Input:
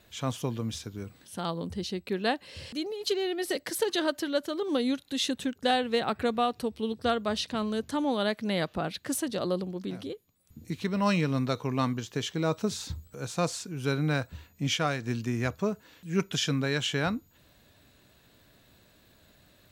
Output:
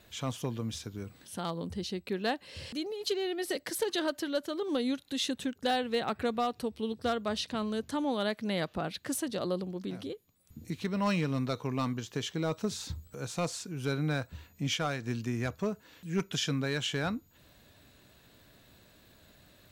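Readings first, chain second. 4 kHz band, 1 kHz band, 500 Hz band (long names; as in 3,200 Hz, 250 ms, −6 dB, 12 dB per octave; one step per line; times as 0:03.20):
−3.0 dB, −4.0 dB, −3.5 dB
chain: in parallel at −1.5 dB: downward compressor 4 to 1, threshold −42 dBFS, peak gain reduction 17.5 dB
on the sum: hard clipping −17.5 dBFS, distortion −23 dB
level −4.5 dB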